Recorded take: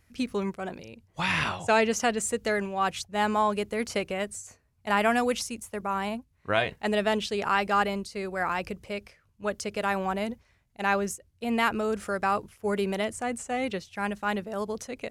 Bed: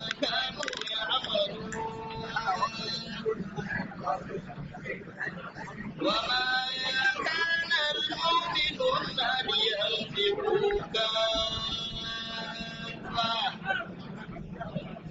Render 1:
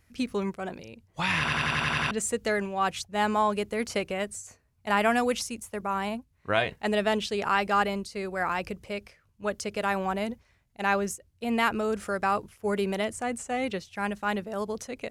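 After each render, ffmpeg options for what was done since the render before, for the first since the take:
ffmpeg -i in.wav -filter_complex "[0:a]asplit=9[link_01][link_02][link_03][link_04][link_05][link_06][link_07][link_08][link_09];[link_01]atrim=end=1.482[link_10];[link_02]atrim=start=1.388:end=1.482[link_11];[link_03]atrim=start=1.388:end=1.482[link_12];[link_04]atrim=start=1.388:end=1.482[link_13];[link_05]atrim=start=1.388:end=1.482[link_14];[link_06]atrim=start=1.388:end=1.482[link_15];[link_07]atrim=start=1.388:end=1.482[link_16];[link_08]atrim=start=1.388:end=1.482[link_17];[link_09]atrim=start=2.108[link_18];[link_10][link_11]acrossfade=duration=0.004:curve1=hsin:curve2=hsin[link_19];[link_19][link_12]acrossfade=duration=0.004:curve1=hsin:curve2=hsin[link_20];[link_20][link_13]acrossfade=duration=0.004:curve1=hsin:curve2=hsin[link_21];[link_21][link_14]acrossfade=duration=0.004:curve1=hsin:curve2=hsin[link_22];[link_22][link_15]acrossfade=duration=0.004:curve1=hsin:curve2=hsin[link_23];[link_23][link_16]acrossfade=duration=0.004:curve1=hsin:curve2=hsin[link_24];[link_24][link_17]acrossfade=duration=0.004:curve1=hsin:curve2=hsin[link_25];[link_25][link_18]acrossfade=duration=0.004:curve1=hsin:curve2=hsin" out.wav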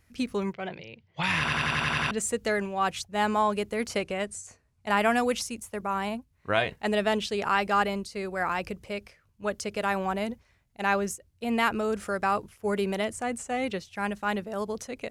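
ffmpeg -i in.wav -filter_complex "[0:a]asplit=3[link_01][link_02][link_03];[link_01]afade=type=out:start_time=0.52:duration=0.02[link_04];[link_02]highpass=100,equalizer=frequency=140:width_type=q:width=4:gain=6,equalizer=frequency=260:width_type=q:width=4:gain=-10,equalizer=frequency=1200:width_type=q:width=4:gain=-4,equalizer=frequency=2100:width_type=q:width=4:gain=8,equalizer=frequency=3100:width_type=q:width=4:gain=7,lowpass=frequency=4900:width=0.5412,lowpass=frequency=4900:width=1.3066,afade=type=in:start_time=0.52:duration=0.02,afade=type=out:start_time=1.22:duration=0.02[link_05];[link_03]afade=type=in:start_time=1.22:duration=0.02[link_06];[link_04][link_05][link_06]amix=inputs=3:normalize=0,asettb=1/sr,asplit=3[link_07][link_08][link_09];[link_07]atrim=end=3.984[link_10];[link_08]atrim=start=3.98:end=4.9,asetpts=PTS-STARTPTS,afade=type=in:duration=0.004:curve=qsin,afade=type=out:start_time=0.916:duration=0.004:curve=qsin,lowpass=frequency=11000:width=0.5412,lowpass=frequency=11000:width=1.3066[link_11];[link_09]atrim=start=4.896[link_12];[link_10][link_11]acrossfade=duration=0.004:curve1=hsin:curve2=qsin[link_13];[link_13][link_12]acrossfade=duration=0.004:curve1=qsin:curve2=hsin" out.wav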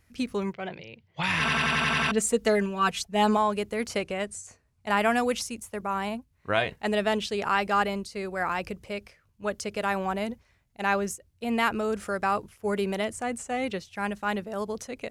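ffmpeg -i in.wav -filter_complex "[0:a]asettb=1/sr,asplit=3[link_01][link_02][link_03];[link_01]atrim=end=1.394[link_04];[link_02]atrim=start=1.39:end=3.37,asetpts=PTS-STARTPTS,afade=type=in:duration=0.004:curve=qsin,afade=type=out:start_time=1.976:duration=0.004:curve=qsin,aecho=1:1:4.5:0.95,atrim=end_sample=87318[link_05];[link_03]atrim=start=3.366[link_06];[link_04][link_05]acrossfade=duration=0.004:curve1=hsin:curve2=qsin[link_07];[link_07][link_06]acrossfade=duration=0.004:curve1=qsin:curve2=hsin" out.wav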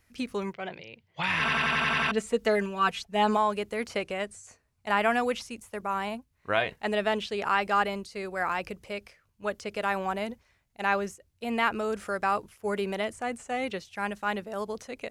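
ffmpeg -i in.wav -filter_complex "[0:a]acrossover=split=3900[link_01][link_02];[link_02]acompressor=threshold=-46dB:ratio=4:attack=1:release=60[link_03];[link_01][link_03]amix=inputs=2:normalize=0,equalizer=frequency=91:width=0.31:gain=-5.5" out.wav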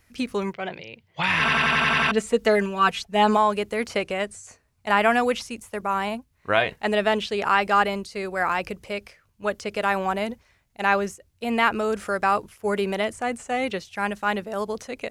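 ffmpeg -i in.wav -af "volume=5.5dB" out.wav

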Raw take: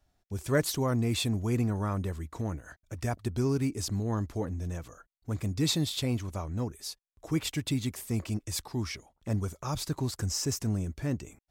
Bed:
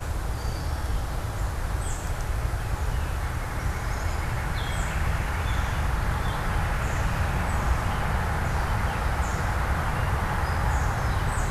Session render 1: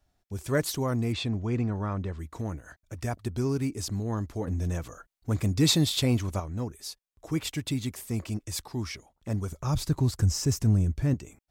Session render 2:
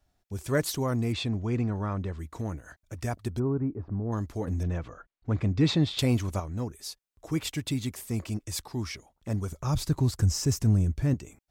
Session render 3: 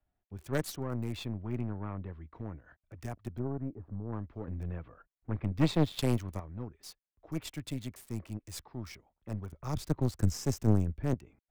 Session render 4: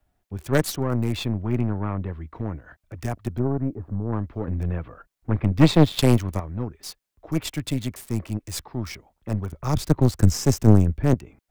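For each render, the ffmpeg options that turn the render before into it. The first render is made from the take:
ffmpeg -i in.wav -filter_complex "[0:a]asettb=1/sr,asplit=3[link_01][link_02][link_03];[link_01]atrim=end=1.124[link_04];[link_02]atrim=start=1.12:end=2.19,asetpts=PTS-STARTPTS,afade=type=in:duration=0.004:curve=qsin,afade=type=out:start_time=1.066:duration=0.004:curve=qsin,lowpass=4200[link_05];[link_03]atrim=start=2.186[link_06];[link_04][link_05]acrossfade=duration=0.004:curve1=hsin:curve2=qsin[link_07];[link_07][link_06]acrossfade=duration=0.004:curve1=qsin:curve2=hsin,asettb=1/sr,asplit=3[link_08][link_09][link_10];[link_08]atrim=end=4.474[link_11];[link_09]atrim=start=4.47:end=6.4,asetpts=PTS-STARTPTS,afade=type=in:duration=0.004:curve=qsin,afade=type=out:start_time=1.926:duration=0.004:curve=qsin,acontrast=37[link_12];[link_10]atrim=start=6.396[link_13];[link_11][link_12]acrossfade=duration=0.004:curve1=hsin:curve2=qsin[link_14];[link_14][link_13]acrossfade=duration=0.004:curve1=qsin:curve2=hsin,asettb=1/sr,asplit=3[link_15][link_16][link_17];[link_15]atrim=end=9.524[link_18];[link_16]atrim=start=9.52:end=11.14,asetpts=PTS-STARTPTS,afade=type=in:duration=0.004:curve=qsin,afade=type=out:start_time=1.616:duration=0.004:curve=qsin,lowshelf=frequency=180:gain=12[link_19];[link_17]atrim=start=11.136[link_20];[link_18][link_19]acrossfade=duration=0.004:curve1=hsin:curve2=qsin[link_21];[link_21][link_20]acrossfade=duration=0.004:curve1=qsin:curve2=hsin" out.wav
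ffmpeg -i in.wav -filter_complex "[0:a]asplit=3[link_01][link_02][link_03];[link_01]afade=type=out:start_time=3.38:duration=0.02[link_04];[link_02]lowpass=frequency=1300:width=0.5412,lowpass=frequency=1300:width=1.3066,afade=type=in:start_time=3.38:duration=0.02,afade=type=out:start_time=4.11:duration=0.02[link_05];[link_03]afade=type=in:start_time=4.11:duration=0.02[link_06];[link_04][link_05][link_06]amix=inputs=3:normalize=0,asettb=1/sr,asplit=3[link_07][link_08][link_09];[link_07]atrim=end=4.634[link_10];[link_08]atrim=start=4.63:end=5.99,asetpts=PTS-STARTPTS,afade=type=in:duration=0.004:curve=qsin,afade=type=out:start_time=1.356:duration=0.004:curve=qsin,lowpass=2900[link_11];[link_09]atrim=start=5.986[link_12];[link_10][link_11]acrossfade=duration=0.004:curve1=hsin:curve2=qsin[link_13];[link_13][link_12]acrossfade=duration=0.004:curve1=qsin:curve2=hsin" out.wav
ffmpeg -i in.wav -filter_complex "[0:a]aeval=exprs='0.224*(cos(1*acos(clip(val(0)/0.224,-1,1)))-cos(1*PI/2))+0.0708*(cos(3*acos(clip(val(0)/0.224,-1,1)))-cos(3*PI/2))+0.0178*(cos(4*acos(clip(val(0)/0.224,-1,1)))-cos(4*PI/2))+0.0126*(cos(5*acos(clip(val(0)/0.224,-1,1)))-cos(5*PI/2))+0.00126*(cos(6*acos(clip(val(0)/0.224,-1,1)))-cos(6*PI/2))':channel_layout=same,acrossover=split=180|760|3100[link_01][link_02][link_03][link_04];[link_04]aeval=exprs='val(0)*gte(abs(val(0)),0.00299)':channel_layout=same[link_05];[link_01][link_02][link_03][link_05]amix=inputs=4:normalize=0" out.wav
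ffmpeg -i in.wav -af "volume=11.5dB,alimiter=limit=-3dB:level=0:latency=1" out.wav

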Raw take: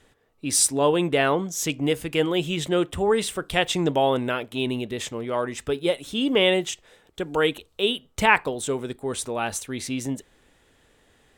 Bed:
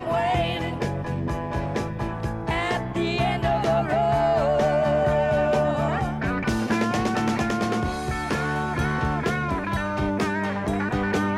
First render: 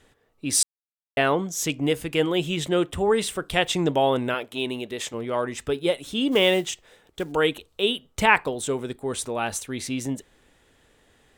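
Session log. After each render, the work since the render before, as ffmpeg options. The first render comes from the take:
ffmpeg -i in.wav -filter_complex "[0:a]asettb=1/sr,asplit=3[link_01][link_02][link_03];[link_01]atrim=end=4.344[link_04];[link_02]atrim=start=4.34:end=5.14,asetpts=PTS-STARTPTS,afade=type=in:duration=0.004:curve=qsin,afade=type=out:start_time=0.796:duration=0.004:curve=qsin,bass=frequency=250:gain=-9,treble=frequency=4000:gain=1[link_05];[link_03]atrim=start=5.136[link_06];[link_04][link_05]acrossfade=duration=0.004:curve1=hsin:curve2=qsin[link_07];[link_07][link_06]acrossfade=duration=0.004:curve1=qsin:curve2=hsin,asplit=3[link_08][link_09][link_10];[link_08]afade=type=out:start_time=6.31:duration=0.02[link_11];[link_09]acrusher=bits=6:mode=log:mix=0:aa=0.000001,afade=type=in:start_time=6.31:duration=0.02,afade=type=out:start_time=7.31:duration=0.02[link_12];[link_10]afade=type=in:start_time=7.31:duration=0.02[link_13];[link_11][link_12][link_13]amix=inputs=3:normalize=0,asplit=3[link_14][link_15][link_16];[link_14]atrim=end=0.63,asetpts=PTS-STARTPTS,afade=type=out:start_time=0.626:duration=0.004:curve=hsin[link_17];[link_15]atrim=start=0.63:end=1.17,asetpts=PTS-STARTPTS,volume=0[link_18];[link_16]atrim=start=1.17,asetpts=PTS-STARTPTS,afade=type=in:duration=0.004:curve=hsin[link_19];[link_17][link_18][link_19]concat=n=3:v=0:a=1" out.wav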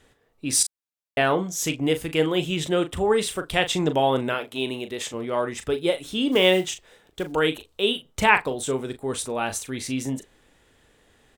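ffmpeg -i in.wav -filter_complex "[0:a]asplit=2[link_01][link_02];[link_02]adelay=38,volume=-10dB[link_03];[link_01][link_03]amix=inputs=2:normalize=0" out.wav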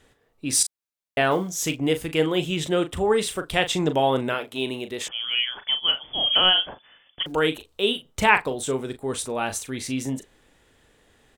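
ffmpeg -i in.wav -filter_complex "[0:a]asettb=1/sr,asplit=3[link_01][link_02][link_03];[link_01]atrim=end=1.314[link_04];[link_02]atrim=start=1.31:end=1.78,asetpts=PTS-STARTPTS,afade=type=in:duration=0.004:curve=qsin,afade=type=out:start_time=0.466:duration=0.004:curve=qsin,acrusher=bits=8:mode=log:mix=0:aa=0.000001[link_05];[link_03]atrim=start=1.776[link_06];[link_04][link_05]acrossfade=duration=0.004:curve1=hsin:curve2=qsin[link_07];[link_07][link_06]acrossfade=duration=0.004:curve1=qsin:curve2=hsin,asettb=1/sr,asplit=3[link_08][link_09][link_10];[link_08]atrim=end=5.084[link_11];[link_09]atrim=start=5.08:end=7.26,asetpts=PTS-STARTPTS,afade=type=in:duration=0.004:curve=qsin,afade=type=out:start_time=2.176:duration=0.004:curve=qsin,lowpass=frequency=3000:width_type=q:width=0.5098,lowpass=frequency=3000:width_type=q:width=0.6013,lowpass=frequency=3000:width_type=q:width=0.9,lowpass=frequency=3000:width_type=q:width=2.563,afreqshift=-3500[link_12];[link_10]atrim=start=7.256[link_13];[link_11][link_12]acrossfade=duration=0.004:curve1=hsin:curve2=qsin[link_14];[link_14][link_13]acrossfade=duration=0.004:curve1=qsin:curve2=hsin" out.wav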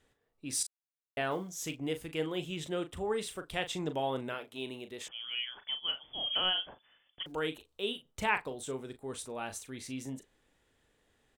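ffmpeg -i in.wav -af "volume=-12.5dB" out.wav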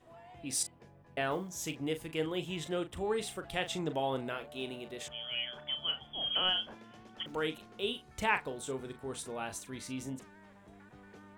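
ffmpeg -i in.wav -i bed.wav -filter_complex "[1:a]volume=-31dB[link_01];[0:a][link_01]amix=inputs=2:normalize=0" out.wav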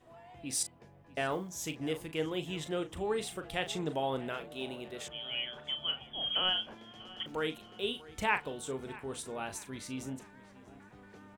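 ffmpeg -i in.wav -filter_complex "[0:a]asplit=2[link_01][link_02];[link_02]adelay=642,lowpass=frequency=3800:poles=1,volume=-19dB,asplit=2[link_03][link_04];[link_04]adelay=642,lowpass=frequency=3800:poles=1,volume=0.49,asplit=2[link_05][link_06];[link_06]adelay=642,lowpass=frequency=3800:poles=1,volume=0.49,asplit=2[link_07][link_08];[link_08]adelay=642,lowpass=frequency=3800:poles=1,volume=0.49[link_09];[link_01][link_03][link_05][link_07][link_09]amix=inputs=5:normalize=0" out.wav

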